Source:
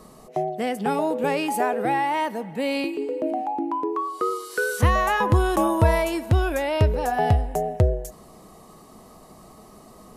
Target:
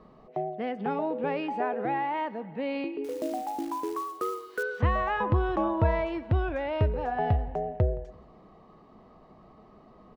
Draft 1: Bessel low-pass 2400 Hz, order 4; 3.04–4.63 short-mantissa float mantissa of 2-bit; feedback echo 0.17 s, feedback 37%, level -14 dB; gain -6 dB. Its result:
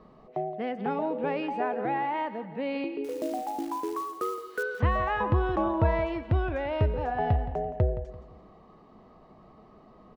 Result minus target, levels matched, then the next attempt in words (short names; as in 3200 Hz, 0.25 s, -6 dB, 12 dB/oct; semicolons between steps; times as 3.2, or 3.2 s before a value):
echo-to-direct +9.5 dB
Bessel low-pass 2400 Hz, order 4; 3.04–4.63 short-mantissa float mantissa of 2-bit; feedback echo 0.17 s, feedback 37%, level -23.5 dB; gain -6 dB